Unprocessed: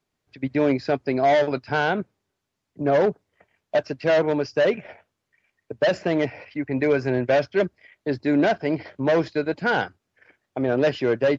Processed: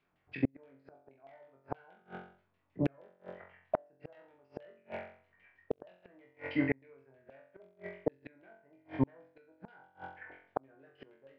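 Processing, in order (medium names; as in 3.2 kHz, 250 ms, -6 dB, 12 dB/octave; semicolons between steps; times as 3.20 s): LFO low-pass saw down 6.3 Hz 700–3000 Hz; flutter echo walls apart 3.8 m, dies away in 0.5 s; inverted gate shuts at -14 dBFS, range -42 dB; trim -2 dB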